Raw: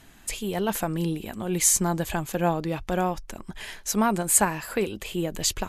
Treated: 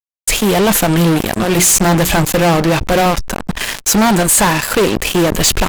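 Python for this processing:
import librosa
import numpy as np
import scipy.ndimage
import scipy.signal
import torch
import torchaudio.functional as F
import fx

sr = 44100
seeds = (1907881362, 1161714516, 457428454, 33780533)

y = fx.hum_notches(x, sr, base_hz=60, count=7, at=(1.38, 3.06))
y = fx.fuzz(y, sr, gain_db=35.0, gate_db=-37.0)
y = fx.sustainer(y, sr, db_per_s=110.0)
y = F.gain(torch.from_numpy(y), 4.5).numpy()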